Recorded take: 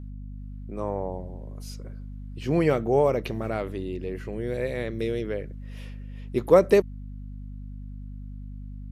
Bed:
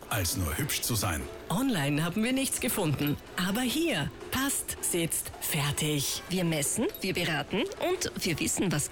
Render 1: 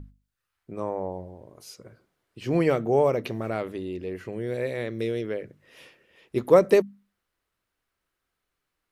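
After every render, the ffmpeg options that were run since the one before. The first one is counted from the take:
-af "bandreject=f=50:t=h:w=6,bandreject=f=100:t=h:w=6,bandreject=f=150:t=h:w=6,bandreject=f=200:t=h:w=6,bandreject=f=250:t=h:w=6"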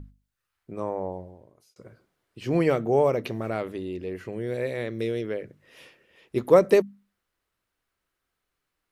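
-filter_complex "[0:a]asplit=2[a][b];[a]atrim=end=1.76,asetpts=PTS-STARTPTS,afade=t=out:st=1.11:d=0.65[c];[b]atrim=start=1.76,asetpts=PTS-STARTPTS,afade=t=in:d=0.004:c=hsin[d];[c][d]concat=n=2:v=0:a=1"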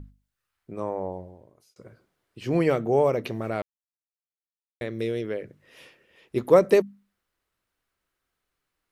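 -filter_complex "[0:a]asplit=3[a][b][c];[a]atrim=end=3.62,asetpts=PTS-STARTPTS,afade=t=out:st=3.616:d=0.004:c=hsin[d];[b]atrim=start=3.62:end=4.81,asetpts=PTS-STARTPTS,volume=0[e];[c]atrim=start=4.81,asetpts=PTS-STARTPTS,afade=t=in:d=0.004:c=hsin[f];[d][e][f]concat=n=3:v=0:a=1"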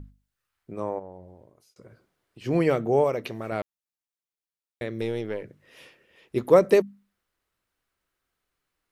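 -filter_complex "[0:a]asplit=3[a][b][c];[a]afade=t=out:st=0.98:d=0.02[d];[b]acompressor=threshold=-45dB:ratio=2:attack=3.2:release=140:knee=1:detection=peak,afade=t=in:st=0.98:d=0.02,afade=t=out:st=2.44:d=0.02[e];[c]afade=t=in:st=2.44:d=0.02[f];[d][e][f]amix=inputs=3:normalize=0,asettb=1/sr,asplit=3[g][h][i];[g]atrim=end=3.044[j];[h]atrim=start=3.04:end=3.52,asetpts=PTS-STARTPTS,afade=t=in:d=0.004:c=qsin,afade=t=out:st=0.476:d=0.004:c=qsin,lowshelf=f=490:g=-5.5[k];[i]atrim=start=3.516[l];[j][k]acrossfade=d=0.004:c1=hsin:c2=qsin[m];[m][l]acrossfade=d=0.004:c1=qsin:c2=hsin,asettb=1/sr,asplit=3[n][o][p];[n]atrim=end=5.014[q];[o]atrim=start=5.01:end=5.43,asetpts=PTS-STARTPTS,afade=t=in:d=0.004:c=qsin,afade=t=out:st=0.416:d=0.004:c=qsin,aeval=exprs='if(lt(val(0),0),0.708*val(0),val(0))':c=same[r];[p]atrim=start=5.426[s];[q][r]acrossfade=d=0.004:c1=hsin:c2=qsin[t];[t][s]acrossfade=d=0.004:c1=qsin:c2=hsin"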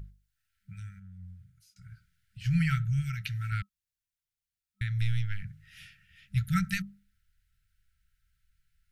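-af "asubboost=boost=9:cutoff=100,afftfilt=real='re*(1-between(b*sr/4096,200,1300))':imag='im*(1-between(b*sr/4096,200,1300))':win_size=4096:overlap=0.75"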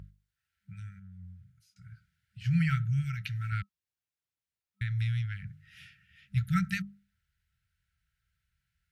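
-af "highpass=69,highshelf=f=4.8k:g=-8"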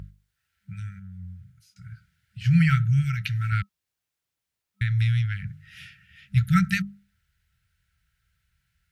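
-af "volume=8dB"

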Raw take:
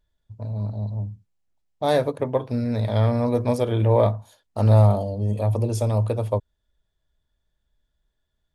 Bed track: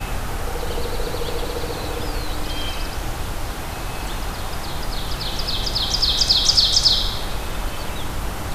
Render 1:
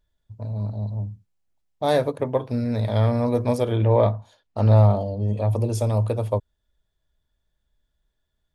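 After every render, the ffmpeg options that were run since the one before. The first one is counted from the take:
-filter_complex "[0:a]asettb=1/sr,asplit=3[a][b][c];[a]atrim=end=3.764[d];[b]atrim=start=3.76:end=5.49,asetpts=PTS-STARTPTS,afade=t=in:d=0.004:c=qsin,afade=t=out:st=1.726:d=0.004:c=qsin,lowpass=5.1k[e];[c]atrim=start=5.486[f];[d][e]acrossfade=d=0.004:c1=hsin:c2=qsin[g];[g][f]acrossfade=d=0.004:c1=qsin:c2=hsin"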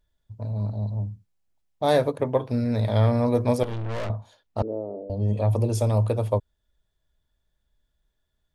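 -filter_complex "[0:a]asettb=1/sr,asplit=3[a][b][c];[a]atrim=end=3.634[d];[b]atrim=start=3.63:end=4.1,asetpts=PTS-STARTPTS,afade=t=in:d=0.004:c=qsin,afade=t=out:st=0.466:d=0.004:c=qsin,aeval=exprs='(tanh(28.2*val(0)+0.7)-tanh(0.7))/28.2':c=same[e];[c]atrim=start=4.096[f];[d][e]acrossfade=d=0.004:c1=hsin:c2=qsin[g];[g][f]acrossfade=d=0.004:c1=qsin:c2=hsin,asettb=1/sr,asplit=3[h][i][j];[h]atrim=end=4.624[k];[i]atrim=start=4.62:end=5.1,asetpts=PTS-STARTPTS,afade=t=in:d=0.004:c=qsin,afade=t=out:st=0.476:d=0.004:c=qsin,asuperpass=centerf=380:order=4:qfactor=2[l];[j]atrim=start=5.096[m];[k][l]acrossfade=d=0.004:c1=hsin:c2=qsin[n];[n][m]acrossfade=d=0.004:c1=qsin:c2=hsin"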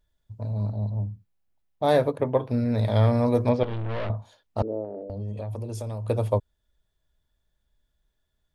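-filter_complex "[0:a]asettb=1/sr,asplit=3[a][b][c];[a]atrim=end=0.714[d];[b]atrim=start=0.71:end=2.78,asetpts=PTS-STARTPTS,afade=t=in:d=0.004:c=qsin,afade=t=out:st=2.066:d=0.004:c=qsin,equalizer=f=7k:t=o:w=1.6:g=-6.5[e];[c]atrim=start=2.776[f];[d][e]acrossfade=d=0.004:c1=hsin:c2=qsin[g];[g][f]acrossfade=d=0.004:c1=qsin:c2=hsin,asettb=1/sr,asplit=3[h][i][j];[h]atrim=end=3.494[k];[i]atrim=start=3.49:end=4.17,asetpts=PTS-STARTPTS,afade=t=in:d=0.004:c=qsin,afade=t=out:st=0.676:d=0.004:c=qsin,lowpass=f=4k:w=0.5412,lowpass=f=4k:w=1.3066[l];[j]atrim=start=4.166[m];[k][l]acrossfade=d=0.004:c1=hsin:c2=qsin[n];[n][m]acrossfade=d=0.004:c1=qsin:c2=hsin,asettb=1/sr,asplit=3[o][p][q];[o]atrim=end=4.844[r];[p]atrim=start=4.84:end=6.09,asetpts=PTS-STARTPTS,afade=t=in:d=0.004:c=qsin,afade=t=out:st=1.246:d=0.004:c=qsin,acompressor=threshold=-30dB:ratio=6:attack=3.2:release=140:knee=1:detection=peak[s];[q]atrim=start=6.086[t];[r][s]acrossfade=d=0.004:c1=hsin:c2=qsin[u];[u][t]acrossfade=d=0.004:c1=qsin:c2=hsin"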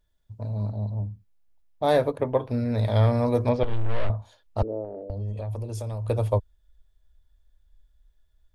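-af "asubboost=boost=6.5:cutoff=63"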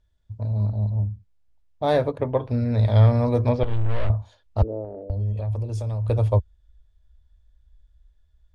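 -af "lowpass=7.3k,equalizer=f=67:t=o:w=1.6:g=10"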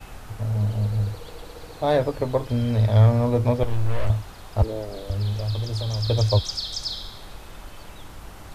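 -filter_complex "[1:a]volume=-14.5dB[a];[0:a][a]amix=inputs=2:normalize=0"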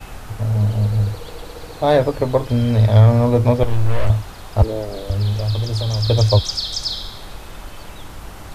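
-af "volume=6dB,alimiter=limit=-3dB:level=0:latency=1"

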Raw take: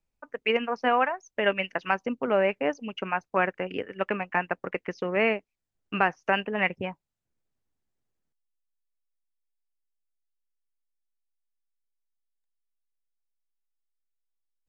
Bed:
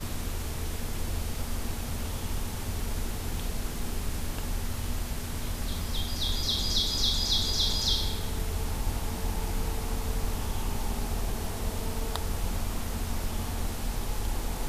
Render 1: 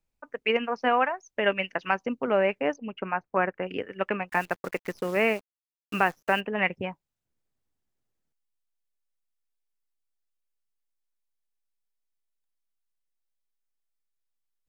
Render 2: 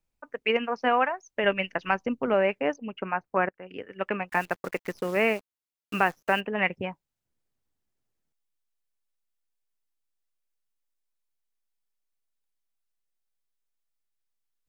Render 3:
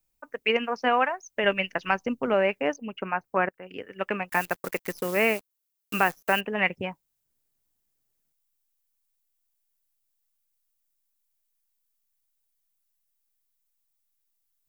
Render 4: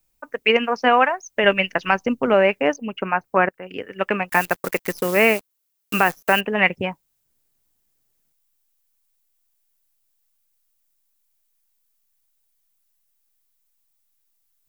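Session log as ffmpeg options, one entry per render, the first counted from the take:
-filter_complex "[0:a]asettb=1/sr,asplit=3[a][b][c];[a]atrim=end=2.764[d];[b]atrim=start=2.76:end=3.63,asetpts=PTS-STARTPTS,afade=t=in:d=0.004:c=qsin,afade=t=out:st=0.866:d=0.004:c=qsin,lowpass=2k[e];[c]atrim=start=3.626[f];[d][e]acrossfade=d=0.004:c1=hsin:c2=qsin[g];[g][f]acrossfade=d=0.004:c1=qsin:c2=hsin,asplit=3[h][i][j];[h]afade=t=out:st=4.28:d=0.02[k];[i]acrusher=bits=8:dc=4:mix=0:aa=0.000001,afade=t=in:st=4.28:d=0.02,afade=t=out:st=6.39:d=0.02[l];[j]afade=t=in:st=6.39:d=0.02[m];[k][l][m]amix=inputs=3:normalize=0"
-filter_complex "[0:a]asettb=1/sr,asplit=3[a][b][c];[a]atrim=end=1.444[d];[b]atrim=start=1.44:end=2.34,asetpts=PTS-STARTPTS,afade=t=in:d=0.004:c=qsin,afade=t=out:st=0.896:d=0.004:c=qsin,lowshelf=f=100:g=11.5[e];[c]atrim=start=2.336[f];[d][e]acrossfade=d=0.004:c1=hsin:c2=qsin[g];[g][f]acrossfade=d=0.004:c1=qsin:c2=hsin,asplit=2[h][i];[h]atrim=end=3.49,asetpts=PTS-STARTPTS,afade=t=out:st=3.486:d=0.004:c=hsin:silence=0.0891251[j];[i]atrim=start=3.49,asetpts=PTS-STARTPTS,afade=t=in:d=0.69:silence=0.0891251[k];[j][k]concat=n=2:v=0:a=1"
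-af "aemphasis=mode=production:type=50kf"
-af "volume=7dB,alimiter=limit=-2dB:level=0:latency=1"

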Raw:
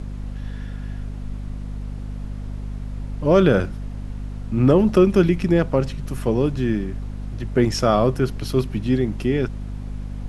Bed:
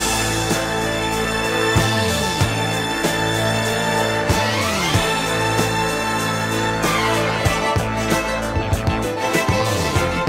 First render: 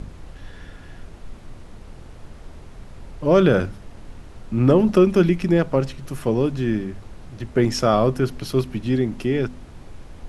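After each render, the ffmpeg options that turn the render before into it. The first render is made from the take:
-af "bandreject=f=50:t=h:w=4,bandreject=f=100:t=h:w=4,bandreject=f=150:t=h:w=4,bandreject=f=200:t=h:w=4,bandreject=f=250:t=h:w=4"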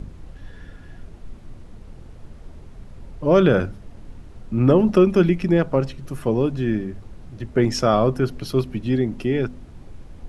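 -af "afftdn=nr=6:nf=-42"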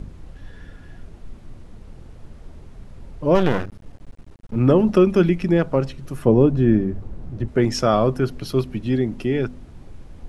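-filter_complex "[0:a]asettb=1/sr,asplit=3[a][b][c];[a]atrim=end=3.354[d];[b]atrim=start=3.35:end=4.56,asetpts=PTS-STARTPTS,afade=t=in:d=0.004:c=qsin,afade=t=out:st=1.206:d=0.004:c=qsin,aeval=exprs='max(val(0),0)':c=same[e];[c]atrim=start=4.556[f];[d][e]acrossfade=d=0.004:c1=hsin:c2=qsin[g];[g][f]acrossfade=d=0.004:c1=qsin:c2=hsin,asettb=1/sr,asplit=3[h][i][j];[h]atrim=end=6.254[k];[i]atrim=start=6.25:end=7.48,asetpts=PTS-STARTPTS,afade=t=in:d=0.004:c=qsin,afade=t=out:st=1.226:d=0.004:c=qsin,tiltshelf=f=1.4k:g=6.5[l];[j]atrim=start=7.476[m];[k][l]acrossfade=d=0.004:c1=hsin:c2=qsin[n];[n][m]acrossfade=d=0.004:c1=qsin:c2=hsin"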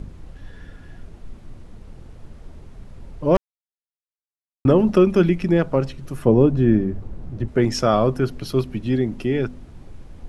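-filter_complex "[0:a]asplit=3[a][b][c];[a]atrim=end=3.37,asetpts=PTS-STARTPTS,afade=t=out:st=3.366:d=0.004:c=hsin[d];[b]atrim=start=3.37:end=4.65,asetpts=PTS-STARTPTS,volume=0[e];[c]atrim=start=4.65,asetpts=PTS-STARTPTS,afade=t=in:d=0.004:c=hsin[f];[d][e][f]concat=n=3:v=0:a=1"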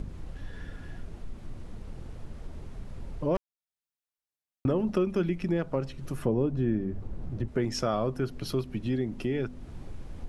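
-af "acompressor=threshold=-33dB:ratio=2"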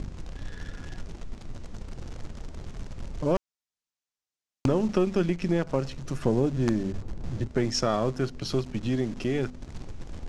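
-filter_complex "[0:a]asplit=2[a][b];[b]acrusher=bits=4:dc=4:mix=0:aa=0.000001,volume=-5.5dB[c];[a][c]amix=inputs=2:normalize=0,lowpass=f=6.6k:t=q:w=1.6"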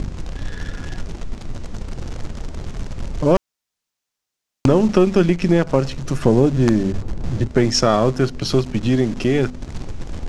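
-af "volume=10dB,alimiter=limit=-1dB:level=0:latency=1"

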